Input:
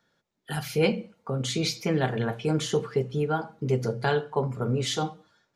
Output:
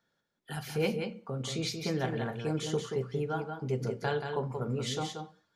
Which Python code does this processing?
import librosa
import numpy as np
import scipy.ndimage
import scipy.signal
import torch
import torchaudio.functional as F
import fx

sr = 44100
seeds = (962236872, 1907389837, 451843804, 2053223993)

y = x + 10.0 ** (-6.0 / 20.0) * np.pad(x, (int(180 * sr / 1000.0), 0))[:len(x)]
y = F.gain(torch.from_numpy(y), -7.0).numpy()